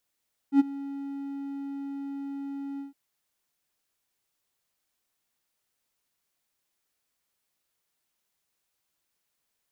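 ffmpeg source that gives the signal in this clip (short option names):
-f lavfi -i "aevalsrc='0.266*(1-4*abs(mod(278*t+0.25,1)-0.5))':d=2.411:s=44100,afade=t=in:d=0.077,afade=t=out:st=0.077:d=0.022:silence=0.106,afade=t=out:st=2.27:d=0.141"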